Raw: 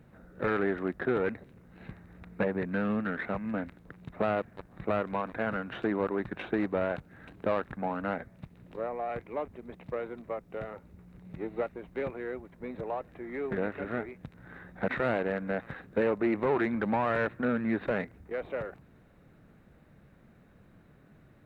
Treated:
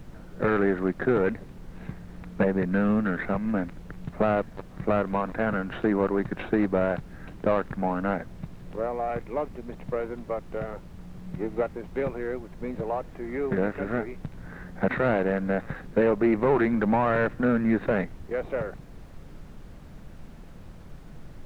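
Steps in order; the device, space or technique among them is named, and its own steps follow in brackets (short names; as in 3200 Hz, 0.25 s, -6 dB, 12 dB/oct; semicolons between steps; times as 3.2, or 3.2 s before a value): car interior (bell 160 Hz +4 dB 0.67 oct; high shelf 2800 Hz -8 dB; brown noise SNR 15 dB); gain +5.5 dB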